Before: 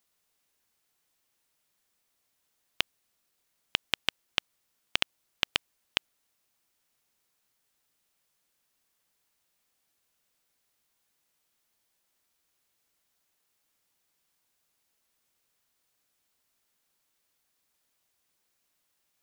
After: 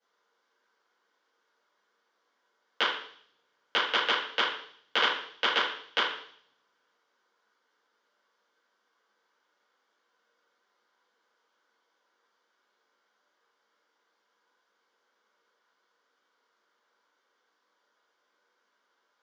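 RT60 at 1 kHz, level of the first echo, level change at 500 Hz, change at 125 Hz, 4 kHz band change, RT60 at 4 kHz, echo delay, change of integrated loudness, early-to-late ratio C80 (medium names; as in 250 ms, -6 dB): 0.55 s, no echo, +11.0 dB, under -10 dB, +3.0 dB, 0.75 s, no echo, +4.0 dB, 7.5 dB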